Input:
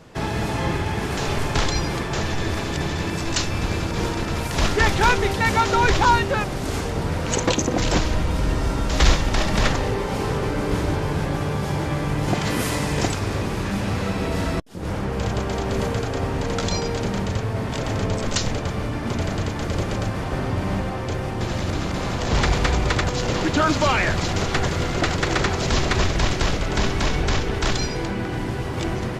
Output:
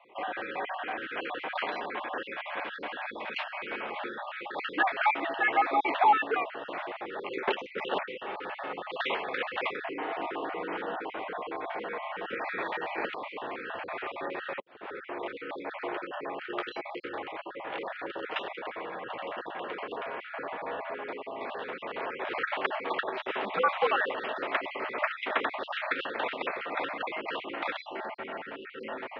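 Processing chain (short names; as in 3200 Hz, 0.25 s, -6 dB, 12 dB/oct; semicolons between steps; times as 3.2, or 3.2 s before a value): random spectral dropouts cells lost 38%; mistuned SSB -110 Hz 540–3100 Hz; gain -3 dB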